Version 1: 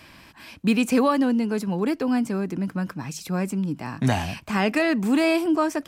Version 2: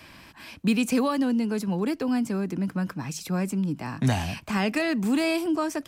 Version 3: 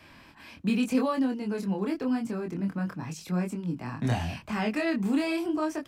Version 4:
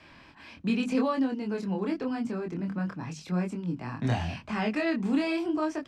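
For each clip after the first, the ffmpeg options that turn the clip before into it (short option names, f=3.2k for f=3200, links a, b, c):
-filter_complex "[0:a]acrossover=split=210|3000[a][b][c];[b]acompressor=threshold=-33dB:ratio=1.5[d];[a][d][c]amix=inputs=3:normalize=0"
-af "highshelf=f=4.2k:g=-7,flanger=delay=22.5:depth=3.3:speed=0.87"
-af "lowpass=6.1k,bandreject=f=50:t=h:w=6,bandreject=f=100:t=h:w=6,bandreject=f=150:t=h:w=6,bandreject=f=200:t=h:w=6,bandreject=f=250:t=h:w=6"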